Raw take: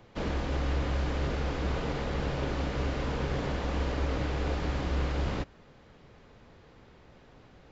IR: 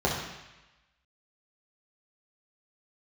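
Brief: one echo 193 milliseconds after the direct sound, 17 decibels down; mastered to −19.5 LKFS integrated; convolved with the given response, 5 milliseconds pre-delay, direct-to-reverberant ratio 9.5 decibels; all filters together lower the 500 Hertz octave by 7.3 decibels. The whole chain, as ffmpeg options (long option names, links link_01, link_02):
-filter_complex "[0:a]equalizer=frequency=500:width_type=o:gain=-9,aecho=1:1:193:0.141,asplit=2[link_01][link_02];[1:a]atrim=start_sample=2205,adelay=5[link_03];[link_02][link_03]afir=irnorm=-1:irlink=0,volume=-23dB[link_04];[link_01][link_04]amix=inputs=2:normalize=0,volume=12dB"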